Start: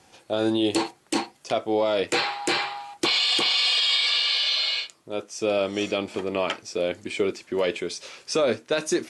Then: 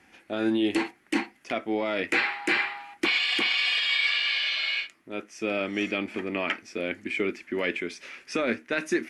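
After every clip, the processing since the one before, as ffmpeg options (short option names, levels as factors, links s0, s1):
-af "equalizer=f=125:t=o:w=1:g=-11,equalizer=f=250:t=o:w=1:g=6,equalizer=f=500:t=o:w=1:g=-8,equalizer=f=1000:t=o:w=1:g=-6,equalizer=f=2000:t=o:w=1:g=10,equalizer=f=4000:t=o:w=1:g=-9,equalizer=f=8000:t=o:w=1:g=-11"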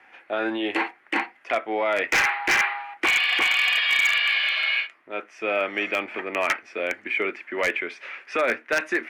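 -filter_complex "[0:a]acrossover=split=490 2800:gain=0.1 1 0.1[s0][s1][s2];[s0][s1][s2]amix=inputs=3:normalize=0,aeval=exprs='0.0794*(abs(mod(val(0)/0.0794+3,4)-2)-1)':c=same,volume=2.66"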